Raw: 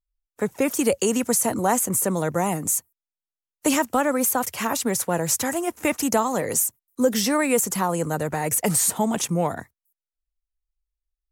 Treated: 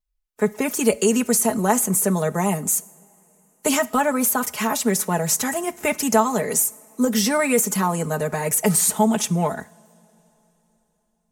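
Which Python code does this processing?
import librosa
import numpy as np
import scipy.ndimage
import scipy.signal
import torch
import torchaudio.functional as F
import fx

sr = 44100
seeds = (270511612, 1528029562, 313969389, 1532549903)

y = x + 0.77 * np.pad(x, (int(4.7 * sr / 1000.0), 0))[:len(x)]
y = fx.rev_double_slope(y, sr, seeds[0], early_s=0.55, late_s=3.9, knee_db=-18, drr_db=17.5)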